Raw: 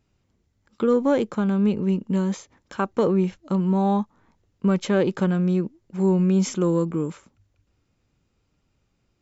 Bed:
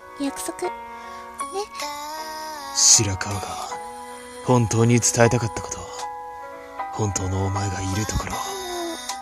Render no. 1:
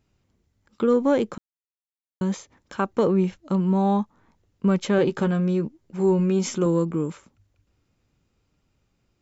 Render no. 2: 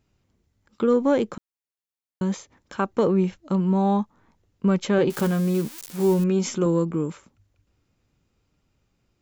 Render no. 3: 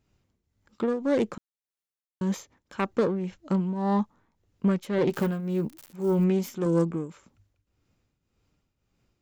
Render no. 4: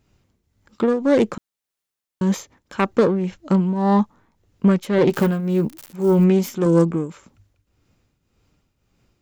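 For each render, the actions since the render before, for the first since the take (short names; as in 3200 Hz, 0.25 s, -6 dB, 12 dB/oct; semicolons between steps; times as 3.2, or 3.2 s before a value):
1.38–2.21 mute; 4.97–6.66 doubler 13 ms -7.5 dB
5.1–6.24 switching spikes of -23.5 dBFS
self-modulated delay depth 0.15 ms; tremolo triangle 1.8 Hz, depth 75%
gain +8 dB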